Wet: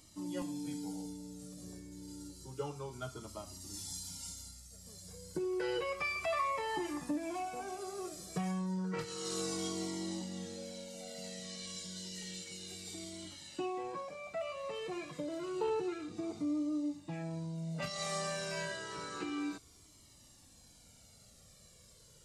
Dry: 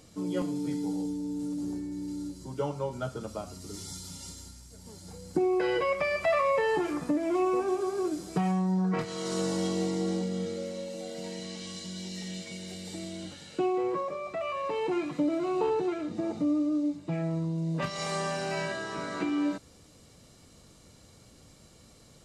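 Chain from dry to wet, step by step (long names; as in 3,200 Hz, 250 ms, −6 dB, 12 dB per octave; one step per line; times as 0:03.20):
high-shelf EQ 3,700 Hz +10 dB
flanger whose copies keep moving one way falling 0.3 Hz
level −4 dB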